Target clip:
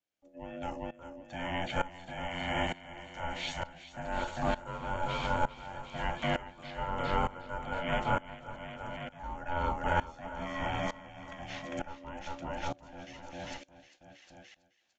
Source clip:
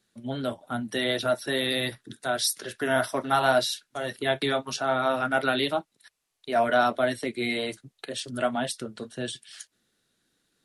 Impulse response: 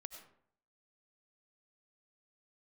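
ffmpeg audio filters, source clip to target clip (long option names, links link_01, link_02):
-filter_complex "[0:a]afreqshift=-23,aeval=exprs='val(0)*sin(2*PI*600*n/s)':channel_layout=same,acrossover=split=4500[link_01][link_02];[link_02]acompressor=threshold=-45dB:ratio=4:attack=1:release=60[link_03];[link_01][link_03]amix=inputs=2:normalize=0,asetrate=31311,aresample=44100,asplit=2[link_04][link_05];[link_05]aecho=0:1:400|760|1084|1376|1638:0.631|0.398|0.251|0.158|0.1[link_06];[link_04][link_06]amix=inputs=2:normalize=0,aresample=16000,aresample=44100,aeval=exprs='val(0)*pow(10,-19*if(lt(mod(-1.1*n/s,1),2*abs(-1.1)/1000),1-mod(-1.1*n/s,1)/(2*abs(-1.1)/1000),(mod(-1.1*n/s,1)-2*abs(-1.1)/1000)/(1-2*abs(-1.1)/1000))/20)':channel_layout=same"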